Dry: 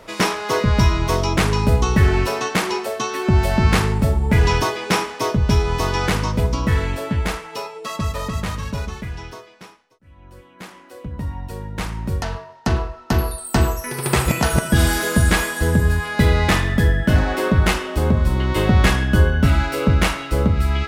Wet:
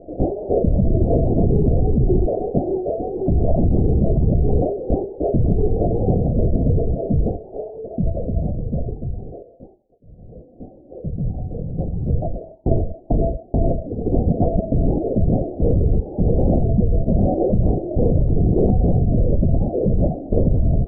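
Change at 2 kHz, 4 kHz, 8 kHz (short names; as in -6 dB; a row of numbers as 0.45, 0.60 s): under -40 dB, under -40 dB, under -40 dB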